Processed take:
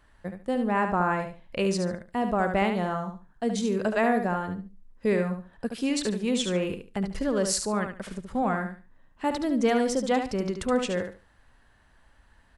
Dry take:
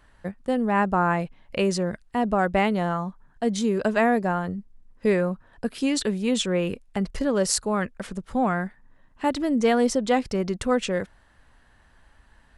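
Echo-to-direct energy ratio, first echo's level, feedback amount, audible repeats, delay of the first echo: −7.0 dB, −7.0 dB, 22%, 3, 72 ms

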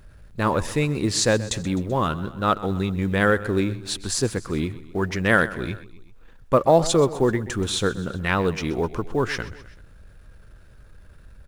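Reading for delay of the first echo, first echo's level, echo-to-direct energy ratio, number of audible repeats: 128 ms, −17.0 dB, −15.5 dB, 3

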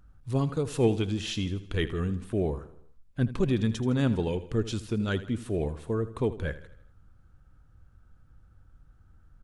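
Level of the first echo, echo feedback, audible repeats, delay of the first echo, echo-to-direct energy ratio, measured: −15.0 dB, 49%, 4, 80 ms, −14.0 dB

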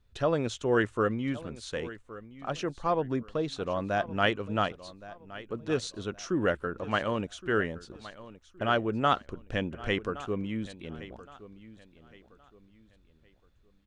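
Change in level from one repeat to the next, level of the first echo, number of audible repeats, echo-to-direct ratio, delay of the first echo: −10.0 dB, −17.0 dB, 2, −16.5 dB, 1,118 ms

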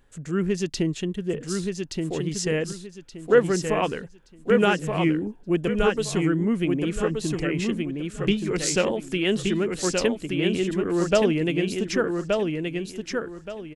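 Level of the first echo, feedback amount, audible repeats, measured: −4.0 dB, 26%, 3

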